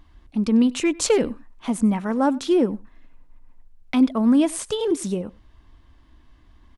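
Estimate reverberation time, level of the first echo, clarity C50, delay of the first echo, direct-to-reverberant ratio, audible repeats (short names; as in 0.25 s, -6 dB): none, -23.0 dB, none, 96 ms, none, 1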